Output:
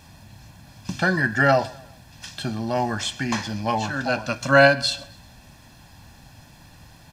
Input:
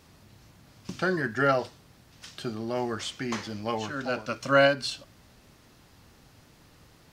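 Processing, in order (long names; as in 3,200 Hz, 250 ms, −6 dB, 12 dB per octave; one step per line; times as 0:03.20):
comb filter 1.2 ms, depth 65%
on a send: repeating echo 131 ms, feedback 41%, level −22 dB
on the sum: level +6 dB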